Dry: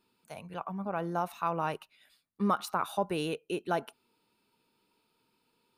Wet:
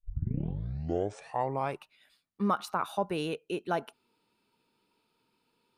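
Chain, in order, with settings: tape start-up on the opening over 1.88 s; treble shelf 10 kHz -8 dB

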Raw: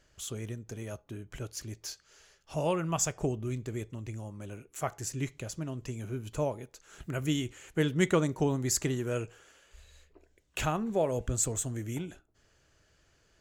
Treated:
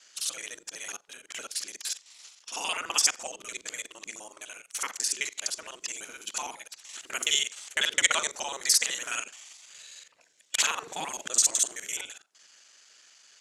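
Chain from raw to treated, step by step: time reversed locally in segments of 42 ms; spectral gate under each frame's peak -10 dB weak; frequency weighting ITU-R 468; trim +5.5 dB

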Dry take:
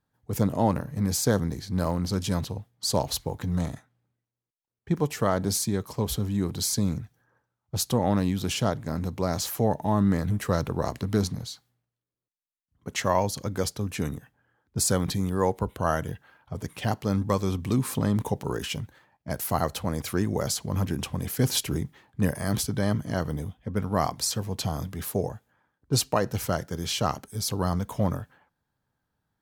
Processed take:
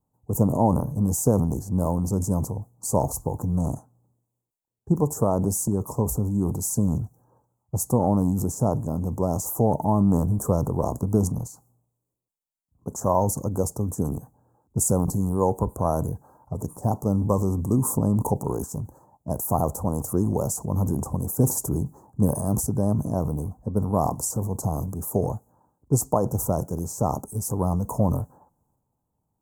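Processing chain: transient shaper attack +3 dB, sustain +8 dB; elliptic band-stop 970–7100 Hz, stop band 60 dB; trim +2 dB

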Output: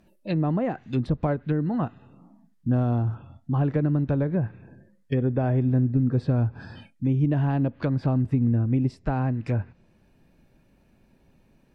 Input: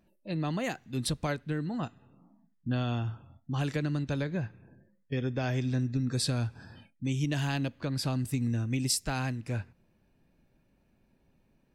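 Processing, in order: 2.75–3.15 s: sample-rate reducer 6.9 kHz, jitter 0%; low-pass that closes with the level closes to 900 Hz, closed at -28 dBFS; trim +8 dB

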